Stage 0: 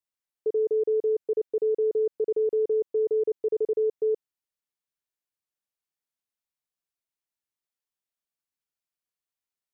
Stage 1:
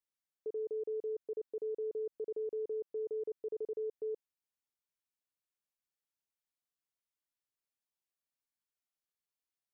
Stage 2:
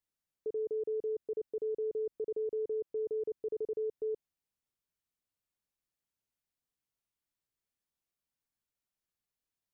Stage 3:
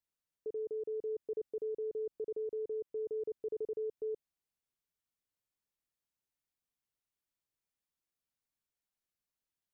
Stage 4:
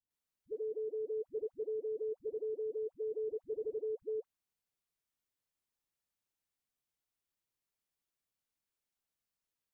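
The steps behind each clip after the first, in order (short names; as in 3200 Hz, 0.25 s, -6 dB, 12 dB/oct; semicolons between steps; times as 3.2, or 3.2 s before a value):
limiter -28.5 dBFS, peak gain reduction 8.5 dB; gain -5 dB
low shelf 280 Hz +10 dB
vocal rider 0.5 s; gain -2.5 dB
dispersion highs, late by 0.108 s, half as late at 420 Hz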